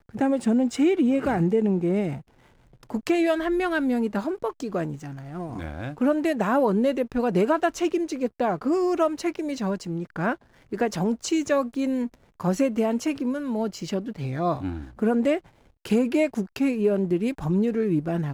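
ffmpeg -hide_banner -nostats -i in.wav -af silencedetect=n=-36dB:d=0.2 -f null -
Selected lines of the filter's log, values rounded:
silence_start: 2.20
silence_end: 2.90 | silence_duration: 0.70
silence_start: 10.35
silence_end: 10.72 | silence_duration: 0.37
silence_start: 12.14
silence_end: 12.40 | silence_duration: 0.26
silence_start: 15.39
silence_end: 15.85 | silence_duration: 0.47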